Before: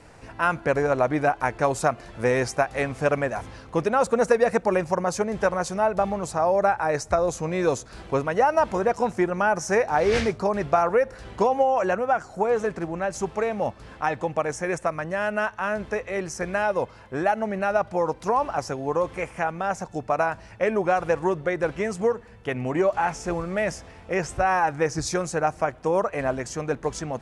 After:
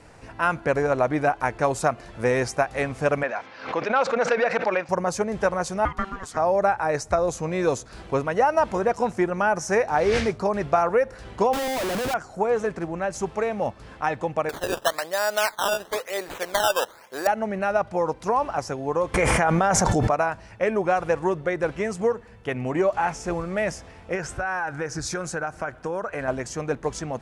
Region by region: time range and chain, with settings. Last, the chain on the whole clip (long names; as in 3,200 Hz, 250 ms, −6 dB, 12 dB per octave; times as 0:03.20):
0:03.23–0:04.89: hard clipping −13.5 dBFS + loudspeaker in its box 350–5,100 Hz, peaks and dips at 380 Hz −6 dB, 1,500 Hz +4 dB, 2,300 Hz +5 dB + background raised ahead of every attack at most 110 dB per second
0:05.85–0:06.37: meter weighting curve A + ring modulation 580 Hz
0:11.53–0:12.14: downward compressor 2.5 to 1, threshold −25 dBFS + low-shelf EQ 150 Hz +9 dB + comparator with hysteresis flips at −38.5 dBFS
0:14.49–0:17.27: high-pass filter 470 Hz + dynamic equaliser 760 Hz, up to +4 dB, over −34 dBFS, Q 0.85 + sample-and-hold swept by an LFO 14× 1 Hz
0:19.14–0:20.15: notch filter 2,600 Hz, Q 11 + envelope flattener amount 100%
0:24.15–0:26.28: parametric band 1,500 Hz +10.5 dB 0.27 octaves + downward compressor 3 to 1, threshold −26 dBFS
whole clip: no processing